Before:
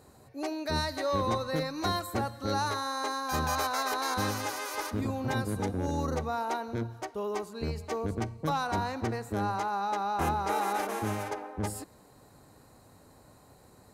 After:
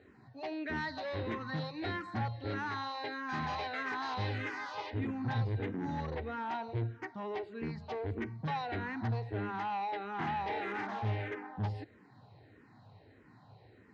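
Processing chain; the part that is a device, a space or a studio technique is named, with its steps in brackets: barber-pole phaser into a guitar amplifier (barber-pole phaser -1.6 Hz; saturation -31 dBFS, distortion -13 dB; cabinet simulation 100–3800 Hz, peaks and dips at 110 Hz +9 dB, 550 Hz -6 dB, 1.2 kHz -6 dB, 1.9 kHz +6 dB); trim +1 dB

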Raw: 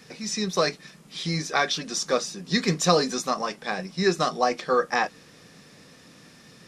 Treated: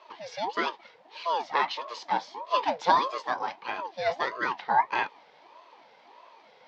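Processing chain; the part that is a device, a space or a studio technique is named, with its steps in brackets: voice changer toy (ring modulator with a swept carrier 570 Hz, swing 50%, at 1.6 Hz; cabinet simulation 440–3700 Hz, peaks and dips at 940 Hz +8 dB, 1.4 kHz -6 dB, 2.8 kHz -4 dB)

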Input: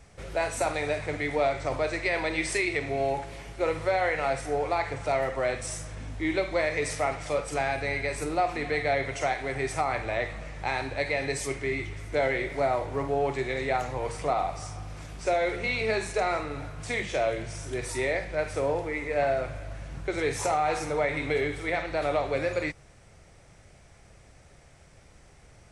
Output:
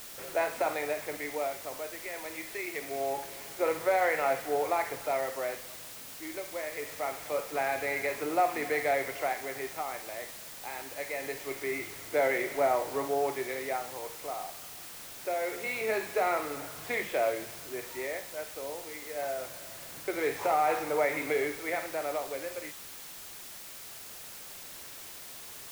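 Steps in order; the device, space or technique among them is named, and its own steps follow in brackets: shortwave radio (band-pass 280–2600 Hz; tremolo 0.24 Hz, depth 74%; white noise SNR 12 dB)

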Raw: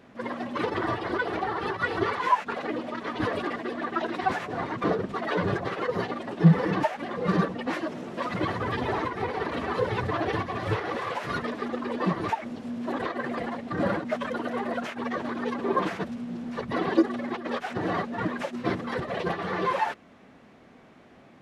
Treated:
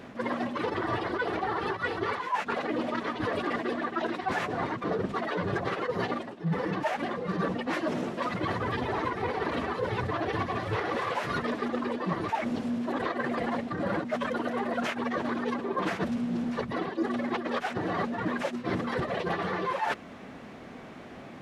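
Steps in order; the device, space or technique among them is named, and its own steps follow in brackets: compression on the reversed sound (reverse; compression 16:1, threshold -35 dBFS, peak gain reduction 24.5 dB; reverse); trim +8.5 dB

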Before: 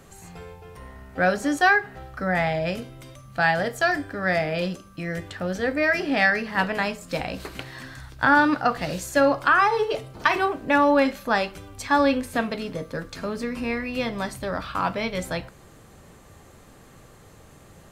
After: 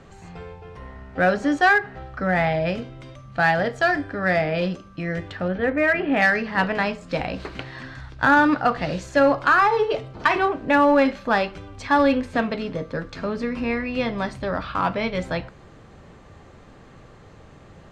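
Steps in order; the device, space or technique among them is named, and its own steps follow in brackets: 5.48–6.22 s: low-pass 3 kHz 24 dB/octave; distance through air 140 m; parallel distortion (in parallel at -7 dB: hard clipper -18.5 dBFS, distortion -11 dB)

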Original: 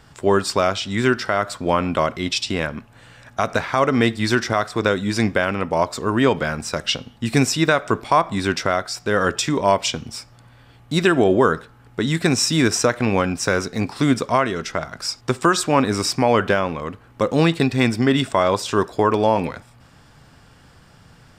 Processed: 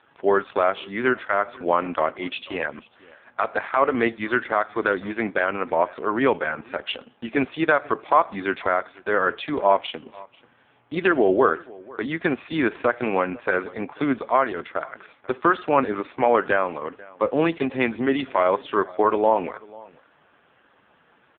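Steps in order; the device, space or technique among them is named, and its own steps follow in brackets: satellite phone (band-pass 330–3300 Hz; delay 491 ms -22.5 dB; AMR-NB 5.15 kbps 8 kHz)

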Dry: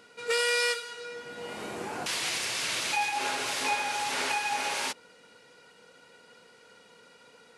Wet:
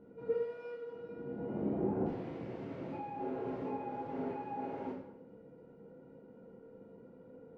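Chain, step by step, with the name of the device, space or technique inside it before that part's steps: television next door (compression, threshold -32 dBFS, peak gain reduction 9 dB; low-pass 320 Hz 12 dB/octave; reverberation RT60 0.75 s, pre-delay 11 ms, DRR -4 dB); trim +5 dB

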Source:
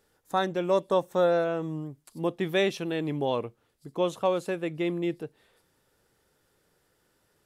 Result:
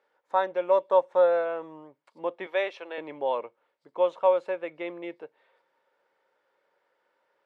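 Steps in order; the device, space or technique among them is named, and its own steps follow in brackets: 2.46–2.98 s: high-pass 430 Hz 12 dB/octave; tin-can telephone (band-pass 590–2300 Hz; small resonant body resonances 550/930/2200 Hz, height 9 dB)

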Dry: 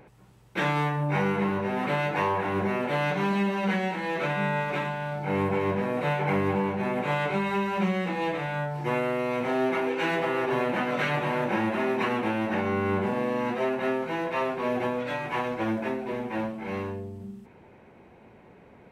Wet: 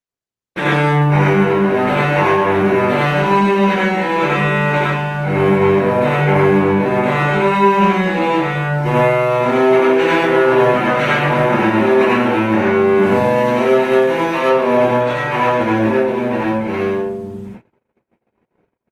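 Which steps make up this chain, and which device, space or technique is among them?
12.98–14.42 s: treble shelf 3.5 kHz +6.5 dB; speakerphone in a meeting room (reverberation RT60 0.50 s, pre-delay 73 ms, DRR -4 dB; level rider gain up to 7.5 dB; gate -34 dBFS, range -49 dB; trim +1 dB; Opus 32 kbps 48 kHz)

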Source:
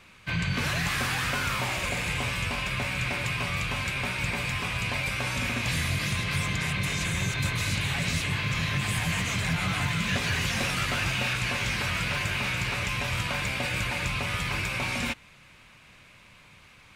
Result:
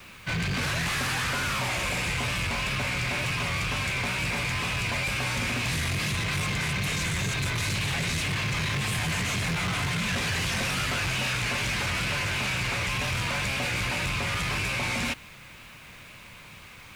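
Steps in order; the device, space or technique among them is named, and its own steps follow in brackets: compact cassette (saturation -32 dBFS, distortion -9 dB; low-pass 13 kHz 12 dB/octave; wow and flutter; white noise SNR 31 dB); trim +6.5 dB

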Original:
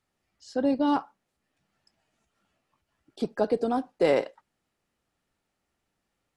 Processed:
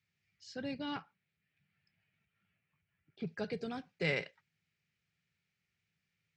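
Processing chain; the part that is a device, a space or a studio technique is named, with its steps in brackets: 0.85–3.26 s: low-pass 4.3 kHz -> 2 kHz 12 dB/octave; car door speaker (cabinet simulation 94–6500 Hz, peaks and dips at 100 Hz +7 dB, 160 Hz +8 dB, 410 Hz +6 dB, 2.3 kHz +8 dB); high-order bell 530 Hz -14.5 dB 2.6 oct; trim -3.5 dB

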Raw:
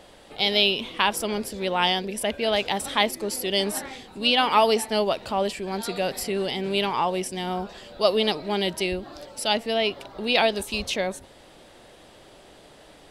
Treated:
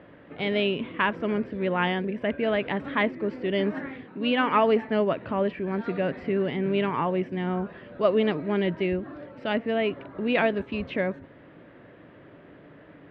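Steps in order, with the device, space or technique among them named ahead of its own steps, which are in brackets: 4.04–4.51 s: high-pass 170 Hz; bass cabinet (cabinet simulation 77–2200 Hz, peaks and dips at 110 Hz +7 dB, 160 Hz +8 dB, 280 Hz +8 dB, 800 Hz -9 dB, 1.7 kHz +3 dB)

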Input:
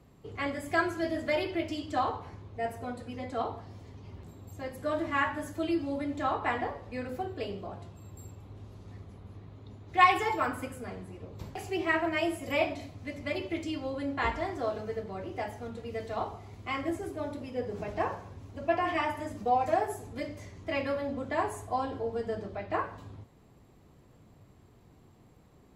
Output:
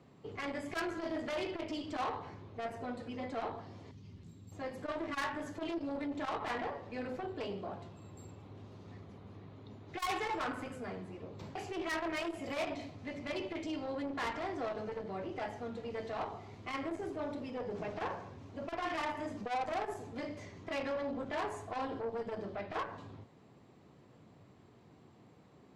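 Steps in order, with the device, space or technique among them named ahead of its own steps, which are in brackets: 3.91–4.52 s: FFT filter 170 Hz 0 dB, 710 Hz -17 dB, 6.6 kHz +1 dB; valve radio (band-pass 130–5800 Hz; valve stage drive 32 dB, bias 0.25; transformer saturation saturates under 310 Hz); trim +1 dB

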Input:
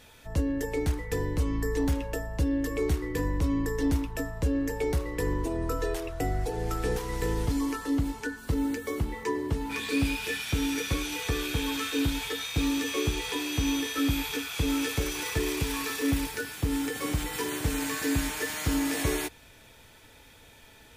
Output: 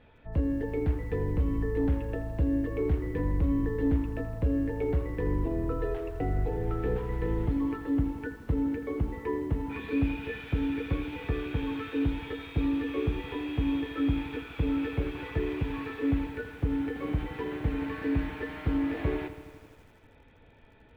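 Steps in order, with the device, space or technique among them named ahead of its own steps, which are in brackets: Bessel low-pass 1.9 kHz, order 6; peaking EQ 1.2 kHz -4 dB 1.8 oct; behind a face mask (treble shelf 3.3 kHz -4.5 dB); bit-crushed delay 82 ms, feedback 80%, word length 9-bit, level -14 dB

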